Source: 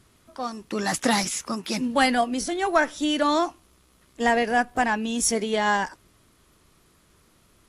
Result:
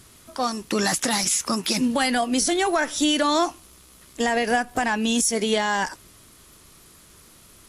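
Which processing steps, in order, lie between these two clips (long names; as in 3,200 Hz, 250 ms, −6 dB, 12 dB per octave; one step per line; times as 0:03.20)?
high-shelf EQ 3,800 Hz +9 dB
downward compressor 3 to 1, threshold −23 dBFS, peak gain reduction 9 dB
brickwall limiter −18 dBFS, peak gain reduction 7.5 dB
level +6 dB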